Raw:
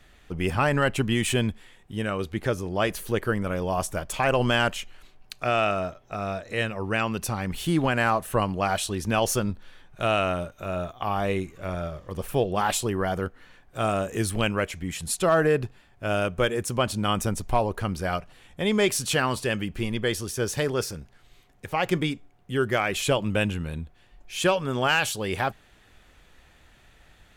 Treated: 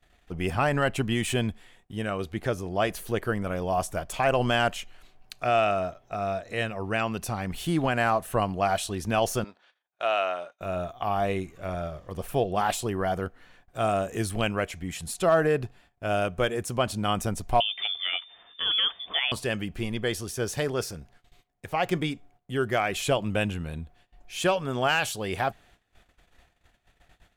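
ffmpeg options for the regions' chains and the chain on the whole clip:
-filter_complex "[0:a]asettb=1/sr,asplit=3[s0][s1][s2];[s0]atrim=end=9.444[s3];[s1]atrim=start=9.44:end=10.61,asetpts=PTS-STARTPTS,afade=t=in:d=0.004:c=qsin,afade=t=out:st=1.166:d=0.004:c=qsin,agate=range=0.0224:threshold=0.00708:ratio=3:release=100:detection=peak,highpass=580,lowpass=5200[s4];[s2]atrim=start=10.606[s5];[s3][s4]acrossfade=d=0.004:c1=hsin:c2=qsin[s6];[s6][s5]acrossfade=d=0.004:c1=qsin:c2=hsin,asettb=1/sr,asplit=3[s7][s8][s9];[s7]atrim=end=17.604[s10];[s8]atrim=start=17.6:end=19.32,asetpts=PTS-STARTPTS,afade=t=in:d=0.004:c=qsin,afade=t=out:st=1.716:d=0.004:c=qsin,deesser=0.9,lowpass=f=3100:t=q:w=0.5098,lowpass=f=3100:t=q:w=0.6013,lowpass=f=3100:t=q:w=0.9,lowpass=f=3100:t=q:w=2.563,afreqshift=-3600[s11];[s9]atrim=start=19.316[s12];[s10][s11]acrossfade=d=0.004:c1=hsin:c2=qsin[s13];[s13][s12]acrossfade=d=0.004:c1=qsin:c2=hsin,deesser=0.45,agate=range=0.141:threshold=0.00224:ratio=16:detection=peak,equalizer=f=700:w=7.5:g=7.5,volume=0.75"

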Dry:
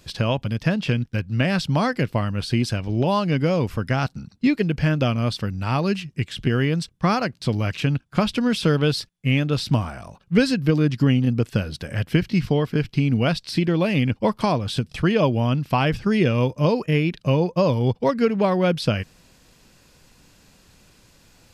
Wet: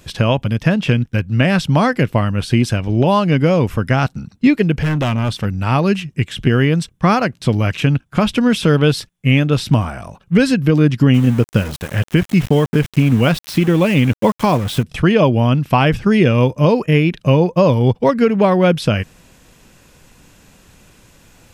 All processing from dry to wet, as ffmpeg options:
-filter_complex "[0:a]asettb=1/sr,asplit=3[s0][s1][s2];[s0]atrim=end=4.814[s3];[s1]atrim=start=4.81:end=5.45,asetpts=PTS-STARTPTS,afade=t=in:d=0.004:c=qsin,afade=t=out:st=0.636:d=0.004:c=qsin,deesser=0.6,volume=10.6,asoftclip=hard,volume=0.0944[s4];[s2]atrim=start=5.446[s5];[s3][s4]acrossfade=d=0.004:c1=hsin:c2=qsin[s6];[s6][s5]acrossfade=d=0.004:c1=qsin:c2=hsin,asettb=1/sr,asplit=3[s7][s8][s9];[s7]atrim=end=11.144[s10];[s8]atrim=start=11.14:end=14.83,asetpts=PTS-STARTPTS,afade=t=in:d=0.004:c=qsin,afade=t=out:st=3.686:d=0.004:c=qsin,bandreject=f=670:w=14,aeval=exprs='val(0)*gte(abs(val(0)),0.0237)':c=same[s11];[s9]atrim=start=14.826[s12];[s10][s11]acrossfade=d=0.004:c1=hsin:c2=qsin[s13];[s13][s12]acrossfade=d=0.004:c1=qsin:c2=hsin,equalizer=f=4600:t=o:w=0.47:g=-7.5,alimiter=level_in=2.51:limit=0.891:release=50:level=0:latency=1,volume=0.891"

